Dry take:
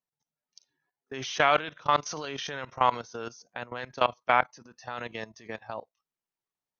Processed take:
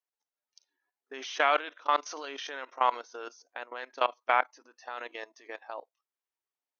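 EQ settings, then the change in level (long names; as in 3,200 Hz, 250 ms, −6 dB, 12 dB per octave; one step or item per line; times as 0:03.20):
linear-phase brick-wall high-pass 250 Hz
low-shelf EQ 460 Hz −8 dB
high-shelf EQ 3,400 Hz −7 dB
0.0 dB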